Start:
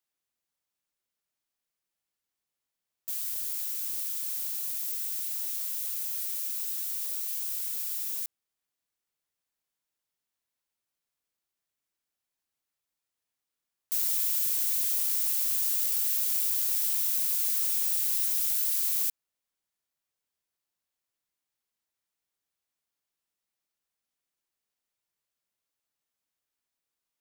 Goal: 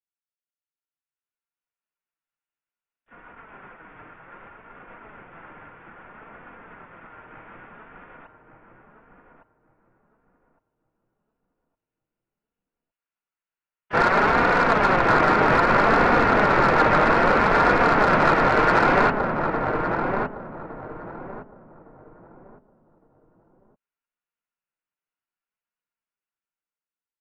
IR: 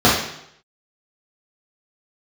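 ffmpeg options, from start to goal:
-filter_complex "[0:a]bandreject=f=50:t=h:w=6,bandreject=f=100:t=h:w=6,bandreject=f=150:t=h:w=6,bandreject=f=200:t=h:w=6,agate=range=-37dB:threshold=-29dB:ratio=16:detection=peak,lowpass=f=2.6k:t=q:w=0.5098,lowpass=f=2.6k:t=q:w=0.6013,lowpass=f=2.6k:t=q:w=0.9,lowpass=f=2.6k:t=q:w=2.563,afreqshift=-3000,equalizer=f=1.4k:t=o:w=0.23:g=11,dynaudnorm=f=400:g=7:m=11dB,flanger=delay=4.1:depth=2.4:regen=-3:speed=0.62:shape=sinusoidal,asplit=2[a][b];[b]adynamicsmooth=sensitivity=5.5:basefreq=530,volume=-1.5dB[c];[a][c]amix=inputs=2:normalize=0,asplit=4[d][e][f][g];[e]asetrate=29433,aresample=44100,atempo=1.49831,volume=-7dB[h];[f]asetrate=33038,aresample=44100,atempo=1.33484,volume=-9dB[i];[g]asetrate=55563,aresample=44100,atempo=0.793701,volume=-12dB[j];[d][h][i][j]amix=inputs=4:normalize=0,aemphasis=mode=production:type=75fm,asplit=2[k][l];[l]adelay=1161,lowpass=f=920:p=1,volume=-3.5dB,asplit=2[m][n];[n]adelay=1161,lowpass=f=920:p=1,volume=0.3,asplit=2[o][p];[p]adelay=1161,lowpass=f=920:p=1,volume=0.3,asplit=2[q][r];[r]adelay=1161,lowpass=f=920:p=1,volume=0.3[s];[k][m][o][q][s]amix=inputs=5:normalize=0,alimiter=level_in=29dB:limit=-1dB:release=50:level=0:latency=1,volume=-6dB"

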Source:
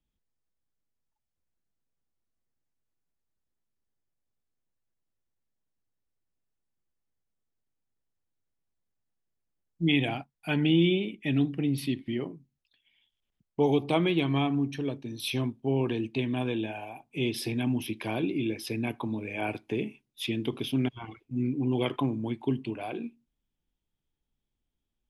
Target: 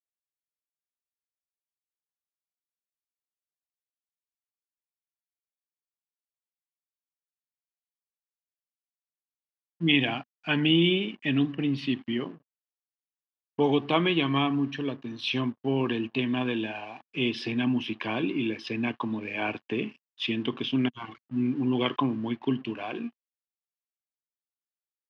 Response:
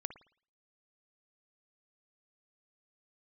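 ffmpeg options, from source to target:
-af "aeval=exprs='sgn(val(0))*max(abs(val(0))-0.00168,0)':c=same,highpass=120,equalizer=f=240:t=q:w=4:g=4,equalizer=f=1.1k:t=q:w=4:g=9,equalizer=f=1.7k:t=q:w=4:g=8,equalizer=f=2.9k:t=q:w=4:g=9,lowpass=f=5.4k:w=0.5412,lowpass=f=5.4k:w=1.3066"

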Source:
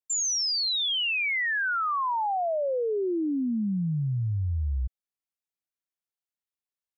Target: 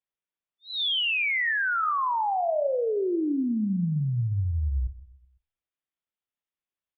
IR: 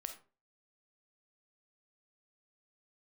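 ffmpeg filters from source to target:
-filter_complex "[0:a]asplit=2[a][b];[b]adelay=126,lowpass=f=1.1k:p=1,volume=-17dB,asplit=2[c][d];[d]adelay=126,lowpass=f=1.1k:p=1,volume=0.47,asplit=2[e][f];[f]adelay=126,lowpass=f=1.1k:p=1,volume=0.47,asplit=2[g][h];[h]adelay=126,lowpass=f=1.1k:p=1,volume=0.47[i];[c][e][g][i]amix=inputs=4:normalize=0[j];[a][j]amix=inputs=2:normalize=0,aresample=8000,aresample=44100,asplit=2[k][l];[1:a]atrim=start_sample=2205[m];[l][m]afir=irnorm=-1:irlink=0,volume=5.5dB[n];[k][n]amix=inputs=2:normalize=0,volume=-6dB"

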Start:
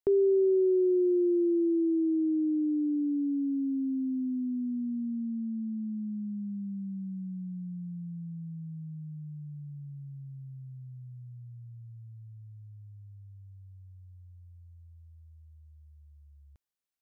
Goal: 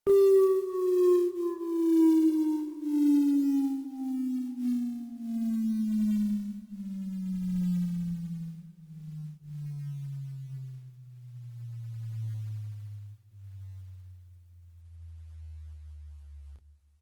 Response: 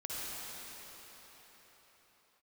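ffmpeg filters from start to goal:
-filter_complex "[0:a]asplit=3[a][b][c];[a]afade=t=out:st=2.88:d=0.02[d];[b]lowshelf=f=97:g=-4,afade=t=in:st=2.88:d=0.02,afade=t=out:st=3.29:d=0.02[e];[c]afade=t=in:st=3.29:d=0.02[f];[d][e][f]amix=inputs=3:normalize=0,asplit=2[g][h];[h]acompressor=threshold=-41dB:ratio=6,volume=-2dB[i];[g][i]amix=inputs=2:normalize=0,aphaser=in_gain=1:out_gain=1:delay=4.8:decay=0.24:speed=0.65:type=triangular,bandreject=f=50:t=h:w=6,bandreject=f=100:t=h:w=6,bandreject=f=150:t=h:w=6,bandreject=f=200:t=h:w=6,bandreject=f=250:t=h:w=6,bandreject=f=300:t=h:w=6,bandreject=f=350:t=h:w=6,asoftclip=type=tanh:threshold=-20.5dB,aecho=1:1:10|28:0.251|0.708,acrusher=bits=7:mode=log:mix=0:aa=0.000001,asplit=2[j][k];[1:a]atrim=start_sample=2205,adelay=144[l];[k][l]afir=irnorm=-1:irlink=0,volume=-18.5dB[m];[j][m]amix=inputs=2:normalize=0" -ar 48000 -c:a libopus -b:a 32k

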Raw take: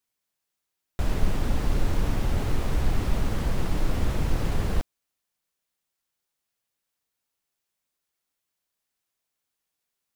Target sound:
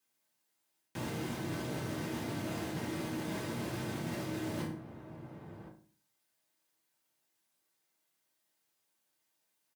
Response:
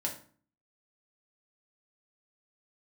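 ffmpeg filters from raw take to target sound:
-filter_complex "[0:a]asplit=2[a][b];[b]adelay=1108,volume=-21dB,highshelf=f=4k:g=-24.9[c];[a][c]amix=inputs=2:normalize=0,aeval=exprs='0.0562*(abs(mod(val(0)/0.0562+3,4)-2)-1)':c=same,highpass=f=110:w=0.5412,highpass=f=110:w=1.3066,aecho=1:1:2.6:0.32,acrossover=split=590|1200[d][e][f];[e]alimiter=level_in=19dB:limit=-24dB:level=0:latency=1,volume=-19dB[g];[d][g][f]amix=inputs=3:normalize=0[h];[1:a]atrim=start_sample=2205[i];[h][i]afir=irnorm=-1:irlink=0,areverse,acompressor=threshold=-36dB:ratio=6,areverse,asetrate=45938,aresample=44100,volume=1dB"

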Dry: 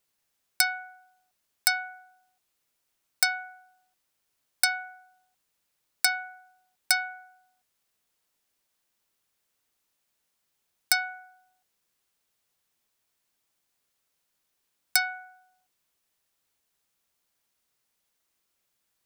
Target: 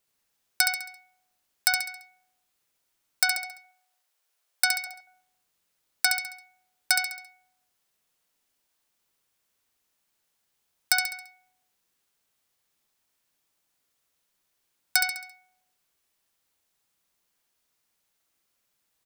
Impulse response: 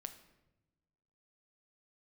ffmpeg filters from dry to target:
-filter_complex "[0:a]asettb=1/sr,asplit=3[a][b][c];[a]atrim=end=3.374[d];[b]atrim=start=3.37:end=4.87,asetpts=PTS-STARTPTS,afade=t=in:d=0.004:c=qsin,afade=t=out:st=1.496:d=0.004:c=qsin,highpass=f=450:w=0.5412,highpass=f=450:w=1.3066[e];[c]atrim=start=4.866[f];[d][e]acrossfade=d=0.004:c1=hsin:c2=qsin[g];[g][f]acrossfade=d=0.004:c1=qsin:c2=hsin,aecho=1:1:68|136|204|272|340:0.562|0.242|0.104|0.0447|0.0192"

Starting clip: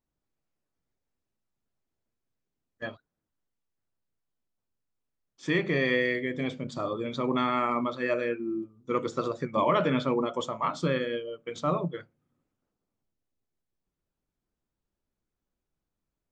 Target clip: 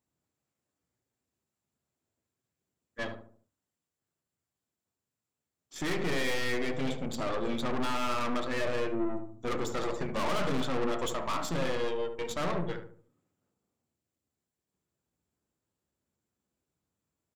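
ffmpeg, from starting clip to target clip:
-filter_complex "[0:a]highpass=f=68:w=0.5412,highpass=f=68:w=1.3066,equalizer=f=7.4k:w=6.7:g=10,atempo=0.94,aeval=exprs='(tanh(63.1*val(0)+0.8)-tanh(0.8))/63.1':c=same,asplit=2[a][b];[b]adelay=73,lowpass=f=1k:p=1,volume=-5dB,asplit=2[c][d];[d]adelay=73,lowpass=f=1k:p=1,volume=0.44,asplit=2[e][f];[f]adelay=73,lowpass=f=1k:p=1,volume=0.44,asplit=2[g][h];[h]adelay=73,lowpass=f=1k:p=1,volume=0.44,asplit=2[i][j];[j]adelay=73,lowpass=f=1k:p=1,volume=0.44[k];[c][e][g][i][k]amix=inputs=5:normalize=0[l];[a][l]amix=inputs=2:normalize=0,volume=6dB"

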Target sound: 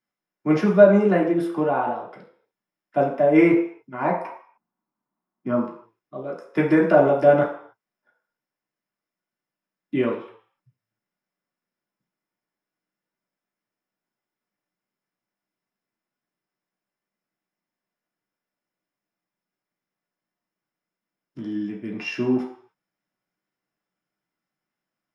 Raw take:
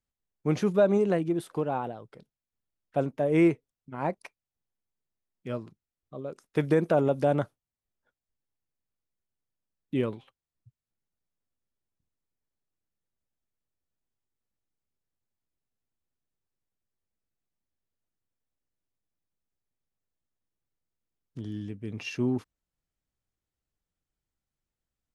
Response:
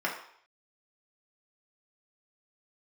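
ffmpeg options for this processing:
-filter_complex "[0:a]asplit=3[a][b][c];[a]afade=t=out:st=4.21:d=0.02[d];[b]equalizer=f=125:t=o:w=1:g=3,equalizer=f=250:t=o:w=1:g=10,equalizer=f=500:t=o:w=1:g=-4,equalizer=f=1k:t=o:w=1:g=11,equalizer=f=2k:t=o:w=1:g=-7,equalizer=f=4k:t=o:w=1:g=-7,equalizer=f=8k:t=o:w=1:g=-10,afade=t=in:st=4.21:d=0.02,afade=t=out:st=5.63:d=0.02[e];[c]afade=t=in:st=5.63:d=0.02[f];[d][e][f]amix=inputs=3:normalize=0[g];[1:a]atrim=start_sample=2205,afade=t=out:st=0.36:d=0.01,atrim=end_sample=16317[h];[g][h]afir=irnorm=-1:irlink=0"

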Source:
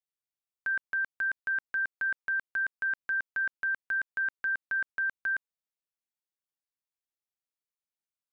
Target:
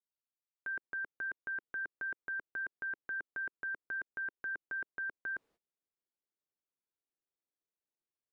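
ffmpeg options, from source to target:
-af "areverse,acompressor=mode=upward:threshold=-47dB:ratio=2.5,areverse,agate=range=-25dB:threshold=-55dB:ratio=16:detection=peak,lowpass=f=1.3k:p=1,equalizer=f=370:t=o:w=1.4:g=10,volume=-5.5dB"

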